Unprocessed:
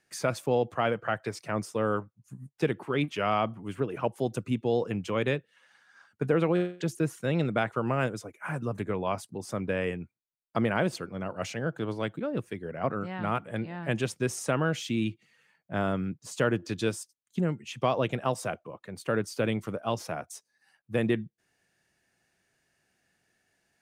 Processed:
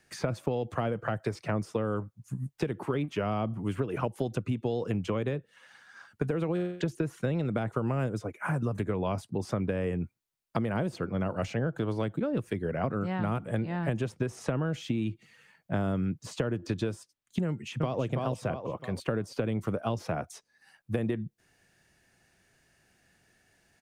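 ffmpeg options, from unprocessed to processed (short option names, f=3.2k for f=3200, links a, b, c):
-filter_complex "[0:a]asplit=2[a][b];[b]afade=t=in:st=17.47:d=0.01,afade=t=out:st=18:d=0.01,aecho=0:1:330|660|990|1320:0.562341|0.168702|0.0506107|0.0151832[c];[a][c]amix=inputs=2:normalize=0,acrossover=split=500|1500|4400[d][e][f][g];[d]acompressor=threshold=-29dB:ratio=4[h];[e]acompressor=threshold=-37dB:ratio=4[i];[f]acompressor=threshold=-50dB:ratio=4[j];[g]acompressor=threshold=-59dB:ratio=4[k];[h][i][j][k]amix=inputs=4:normalize=0,lowshelf=f=100:g=9.5,acompressor=threshold=-32dB:ratio=6,volume=6dB"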